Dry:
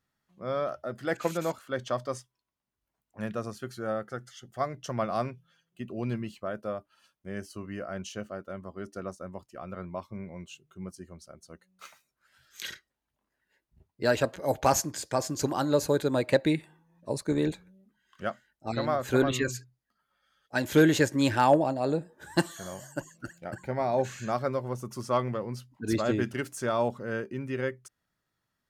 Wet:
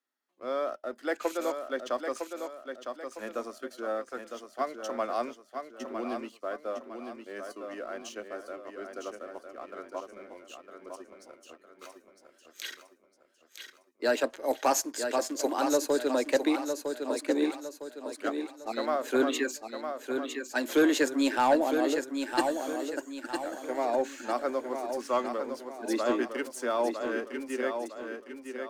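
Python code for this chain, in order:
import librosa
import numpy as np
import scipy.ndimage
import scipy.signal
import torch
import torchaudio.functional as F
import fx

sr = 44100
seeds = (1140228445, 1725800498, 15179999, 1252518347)

y = scipy.signal.sosfilt(scipy.signal.butter(12, 240.0, 'highpass', fs=sr, output='sos'), x)
y = fx.leveller(y, sr, passes=1)
y = fx.echo_feedback(y, sr, ms=957, feedback_pct=41, wet_db=-6.5)
y = y * librosa.db_to_amplitude(-4.5)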